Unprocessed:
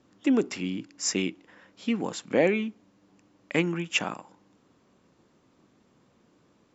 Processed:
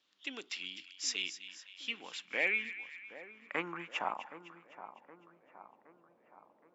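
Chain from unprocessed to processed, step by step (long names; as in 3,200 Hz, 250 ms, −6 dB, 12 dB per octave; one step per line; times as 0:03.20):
band-pass filter sweep 3,500 Hz → 640 Hz, 0:01.68–0:04.76
echo with a time of its own for lows and highs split 1,500 Hz, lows 769 ms, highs 254 ms, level −12.5 dB
level +2.5 dB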